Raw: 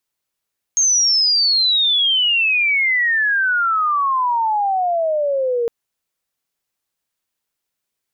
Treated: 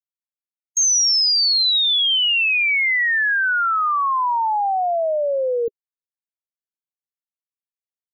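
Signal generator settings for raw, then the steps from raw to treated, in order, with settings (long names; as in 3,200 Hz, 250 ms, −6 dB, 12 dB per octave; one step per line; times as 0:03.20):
glide logarithmic 6,500 Hz → 460 Hz −12 dBFS → −16 dBFS 4.91 s
spectral dynamics exaggerated over time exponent 2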